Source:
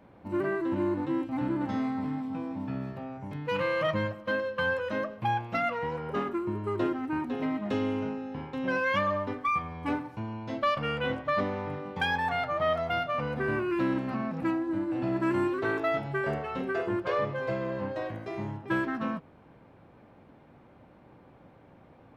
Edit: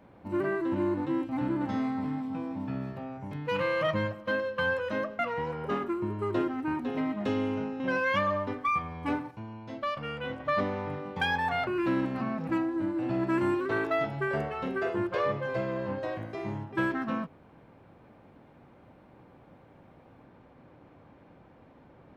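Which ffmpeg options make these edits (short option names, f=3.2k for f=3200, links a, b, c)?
-filter_complex "[0:a]asplit=6[a][b][c][d][e][f];[a]atrim=end=5.192[g];[b]atrim=start=5.638:end=8.252[h];[c]atrim=start=8.598:end=10.112[i];[d]atrim=start=10.108:end=11.202,asetpts=PTS-STARTPTS,volume=-5.5dB[j];[e]atrim=start=11.198:end=12.472[k];[f]atrim=start=13.598[l];[g][h]acrossfade=d=0.004:c1=hsin:c2=hsin[m];[m][i]acrossfade=d=0.004:c1=hsin:c2=hsin[n];[n][j]acrossfade=d=0.004:c1=hsin:c2=hsin[o];[o][k]acrossfade=d=0.004:c1=hsin:c2=hsin[p];[p][l]acrossfade=d=0.004:c1=hsin:c2=hsin"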